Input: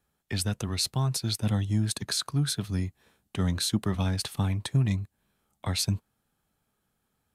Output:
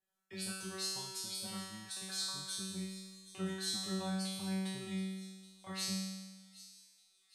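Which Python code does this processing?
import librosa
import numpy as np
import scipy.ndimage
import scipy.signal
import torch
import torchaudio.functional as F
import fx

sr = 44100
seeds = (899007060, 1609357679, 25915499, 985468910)

p1 = fx.bass_treble(x, sr, bass_db=-7, treble_db=0)
p2 = fx.comb_fb(p1, sr, f0_hz=190.0, decay_s=1.3, harmonics='all', damping=0.0, mix_pct=100)
p3 = p2 + fx.echo_wet_highpass(p2, sr, ms=775, feedback_pct=63, hz=3700.0, wet_db=-14.5, dry=0)
y = p3 * librosa.db_to_amplitude(11.0)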